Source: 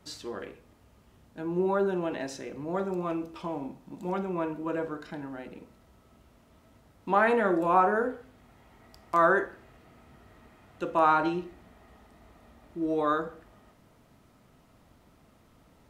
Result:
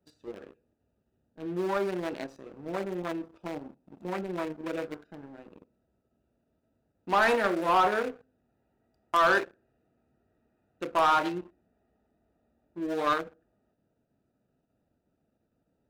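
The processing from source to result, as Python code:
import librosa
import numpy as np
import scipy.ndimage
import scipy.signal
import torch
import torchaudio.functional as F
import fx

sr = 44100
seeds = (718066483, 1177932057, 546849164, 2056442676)

p1 = fx.wiener(x, sr, points=41)
p2 = fx.tilt_eq(p1, sr, slope=3.0)
p3 = fx.level_steps(p2, sr, step_db=14)
p4 = p2 + (p3 * 10.0 ** (-1.0 / 20.0))
p5 = fx.leveller(p4, sr, passes=2)
y = p5 * 10.0 ** (-7.5 / 20.0)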